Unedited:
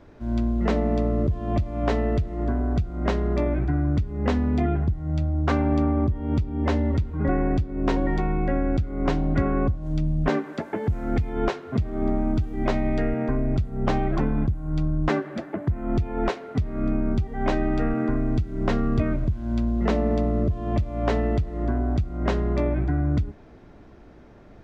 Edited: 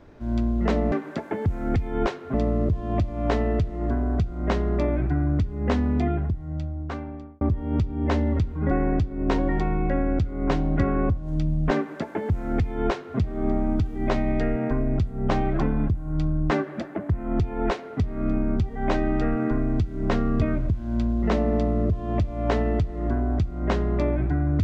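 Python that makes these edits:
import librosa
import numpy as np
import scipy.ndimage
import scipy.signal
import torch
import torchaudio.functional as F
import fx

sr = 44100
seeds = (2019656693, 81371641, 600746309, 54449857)

y = fx.edit(x, sr, fx.fade_out_span(start_s=4.5, length_s=1.49),
    fx.duplicate(start_s=10.34, length_s=1.42, to_s=0.92), tone=tone)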